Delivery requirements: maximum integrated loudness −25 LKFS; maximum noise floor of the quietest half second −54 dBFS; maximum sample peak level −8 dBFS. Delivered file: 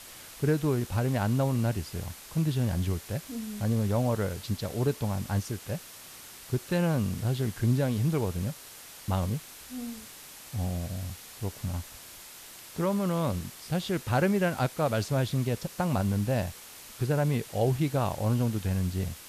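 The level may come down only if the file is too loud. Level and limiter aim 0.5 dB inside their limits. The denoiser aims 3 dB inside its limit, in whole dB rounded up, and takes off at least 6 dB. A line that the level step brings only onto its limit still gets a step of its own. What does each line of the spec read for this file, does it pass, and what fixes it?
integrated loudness −30.0 LKFS: in spec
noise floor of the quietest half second −47 dBFS: out of spec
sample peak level −12.5 dBFS: in spec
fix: broadband denoise 10 dB, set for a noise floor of −47 dBFS

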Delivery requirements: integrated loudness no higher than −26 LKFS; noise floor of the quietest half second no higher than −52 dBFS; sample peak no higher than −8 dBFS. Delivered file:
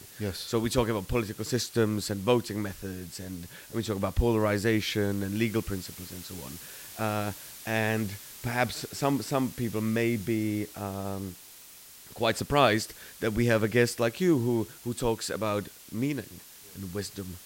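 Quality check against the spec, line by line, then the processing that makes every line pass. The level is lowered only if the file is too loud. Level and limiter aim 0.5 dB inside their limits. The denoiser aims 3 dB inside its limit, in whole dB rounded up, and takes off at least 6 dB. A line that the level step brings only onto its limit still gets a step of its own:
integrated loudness −29.5 LKFS: in spec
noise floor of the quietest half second −50 dBFS: out of spec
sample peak −7.0 dBFS: out of spec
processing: broadband denoise 6 dB, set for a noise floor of −50 dBFS
brickwall limiter −8.5 dBFS

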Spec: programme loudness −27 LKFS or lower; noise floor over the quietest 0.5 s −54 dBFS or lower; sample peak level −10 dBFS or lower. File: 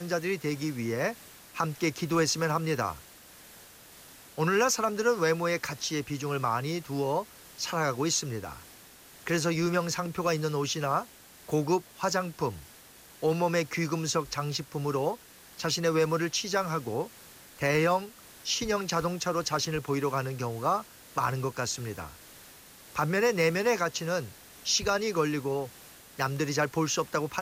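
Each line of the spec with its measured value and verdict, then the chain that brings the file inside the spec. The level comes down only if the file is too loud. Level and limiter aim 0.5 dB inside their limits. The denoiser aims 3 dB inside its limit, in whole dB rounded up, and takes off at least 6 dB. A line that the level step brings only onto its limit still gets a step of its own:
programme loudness −29.5 LKFS: in spec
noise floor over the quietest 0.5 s −53 dBFS: out of spec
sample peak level −15.0 dBFS: in spec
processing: broadband denoise 6 dB, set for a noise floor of −53 dBFS

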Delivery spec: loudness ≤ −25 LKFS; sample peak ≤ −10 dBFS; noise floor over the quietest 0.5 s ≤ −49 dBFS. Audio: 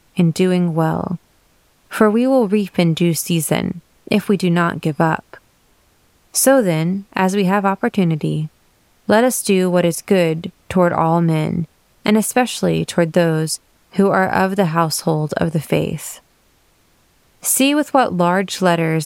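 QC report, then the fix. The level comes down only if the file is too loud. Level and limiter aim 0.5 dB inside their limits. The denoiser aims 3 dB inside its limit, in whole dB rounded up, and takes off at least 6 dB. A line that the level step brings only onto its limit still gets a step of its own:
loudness −17.0 LKFS: out of spec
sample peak −1.5 dBFS: out of spec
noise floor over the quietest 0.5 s −57 dBFS: in spec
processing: level −8.5 dB
brickwall limiter −10.5 dBFS

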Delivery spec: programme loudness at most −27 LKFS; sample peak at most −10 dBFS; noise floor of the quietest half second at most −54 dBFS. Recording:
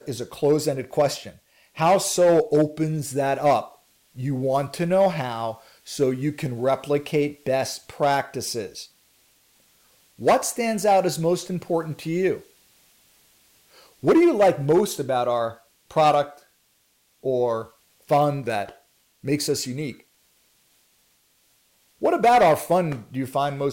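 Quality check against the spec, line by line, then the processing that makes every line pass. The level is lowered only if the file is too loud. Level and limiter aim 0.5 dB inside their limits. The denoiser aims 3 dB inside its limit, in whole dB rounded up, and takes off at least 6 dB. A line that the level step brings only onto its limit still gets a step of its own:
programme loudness −22.5 LKFS: out of spec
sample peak −11.0 dBFS: in spec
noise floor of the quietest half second −65 dBFS: in spec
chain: level −5 dB

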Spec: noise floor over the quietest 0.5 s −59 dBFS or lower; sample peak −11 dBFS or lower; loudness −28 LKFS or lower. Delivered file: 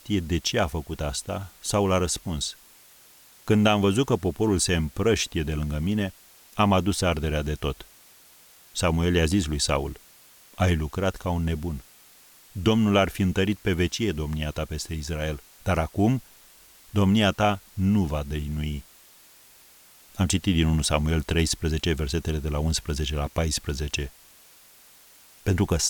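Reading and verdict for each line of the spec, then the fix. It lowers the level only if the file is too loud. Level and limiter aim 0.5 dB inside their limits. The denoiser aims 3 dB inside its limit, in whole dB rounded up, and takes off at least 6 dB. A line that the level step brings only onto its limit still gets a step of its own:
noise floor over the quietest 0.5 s −53 dBFS: out of spec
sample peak −6.5 dBFS: out of spec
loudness −25.5 LKFS: out of spec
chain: broadband denoise 6 dB, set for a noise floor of −53 dBFS
level −3 dB
brickwall limiter −11.5 dBFS

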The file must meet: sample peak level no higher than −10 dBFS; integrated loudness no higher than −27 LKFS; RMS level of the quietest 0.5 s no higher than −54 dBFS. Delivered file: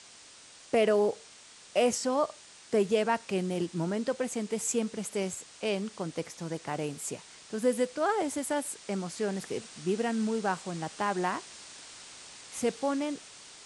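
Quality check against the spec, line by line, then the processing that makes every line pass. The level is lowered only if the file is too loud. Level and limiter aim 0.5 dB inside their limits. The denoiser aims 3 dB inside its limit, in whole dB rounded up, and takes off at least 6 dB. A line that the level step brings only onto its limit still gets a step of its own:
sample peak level −13.0 dBFS: in spec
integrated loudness −31.5 LKFS: in spec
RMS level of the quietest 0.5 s −53 dBFS: out of spec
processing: broadband denoise 6 dB, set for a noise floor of −53 dBFS

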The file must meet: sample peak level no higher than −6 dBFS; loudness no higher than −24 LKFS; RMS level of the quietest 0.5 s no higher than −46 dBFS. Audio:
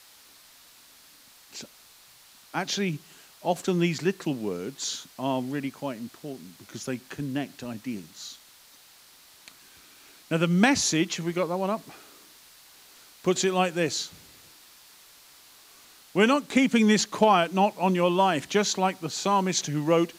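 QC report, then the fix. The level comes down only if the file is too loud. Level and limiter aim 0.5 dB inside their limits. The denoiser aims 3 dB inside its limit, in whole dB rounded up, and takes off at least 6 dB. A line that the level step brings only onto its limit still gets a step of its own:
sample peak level −7.5 dBFS: in spec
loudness −26.0 LKFS: in spec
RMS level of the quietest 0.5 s −54 dBFS: in spec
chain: no processing needed

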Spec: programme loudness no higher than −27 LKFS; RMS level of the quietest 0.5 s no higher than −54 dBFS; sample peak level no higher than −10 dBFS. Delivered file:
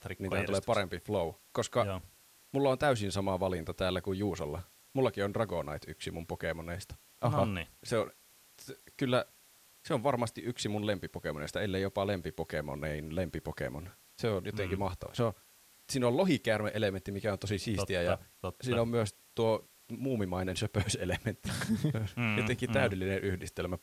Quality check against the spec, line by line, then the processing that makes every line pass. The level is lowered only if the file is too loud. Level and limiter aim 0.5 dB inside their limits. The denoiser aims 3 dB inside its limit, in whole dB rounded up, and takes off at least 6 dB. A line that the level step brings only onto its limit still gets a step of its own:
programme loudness −34.0 LKFS: in spec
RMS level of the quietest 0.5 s −62 dBFS: in spec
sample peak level −14.0 dBFS: in spec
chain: no processing needed

